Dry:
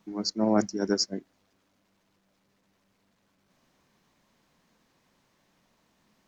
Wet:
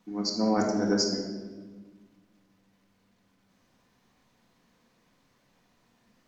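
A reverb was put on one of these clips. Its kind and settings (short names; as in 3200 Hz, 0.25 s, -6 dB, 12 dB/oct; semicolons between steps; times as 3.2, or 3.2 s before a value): shoebox room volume 1200 m³, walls mixed, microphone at 1.9 m; gain -2.5 dB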